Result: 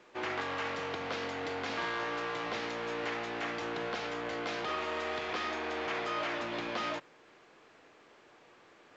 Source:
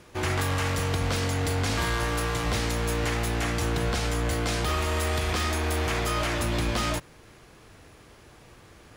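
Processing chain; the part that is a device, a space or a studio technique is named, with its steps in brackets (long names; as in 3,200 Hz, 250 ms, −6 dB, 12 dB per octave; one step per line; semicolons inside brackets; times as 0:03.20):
telephone (band-pass filter 330–3,400 Hz; level −5 dB; A-law companding 128 kbit/s 16,000 Hz)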